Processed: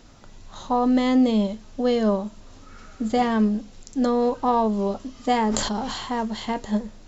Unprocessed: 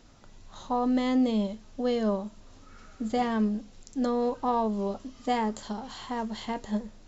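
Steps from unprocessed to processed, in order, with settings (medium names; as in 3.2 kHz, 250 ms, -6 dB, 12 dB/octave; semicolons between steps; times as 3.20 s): 5.38–6.16 s: decay stretcher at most 30 dB/s; trim +6 dB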